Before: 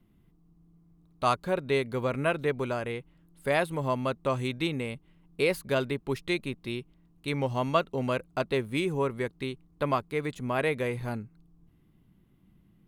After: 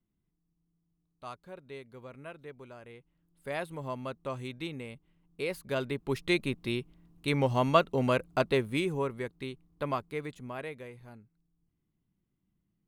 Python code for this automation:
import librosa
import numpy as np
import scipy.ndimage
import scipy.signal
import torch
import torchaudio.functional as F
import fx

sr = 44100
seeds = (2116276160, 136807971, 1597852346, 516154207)

y = fx.gain(x, sr, db=fx.line((2.71, -18.0), (3.64, -8.5), (5.43, -8.5), (6.36, 2.0), (8.44, 2.0), (9.18, -5.0), (10.13, -5.0), (10.99, -17.0)))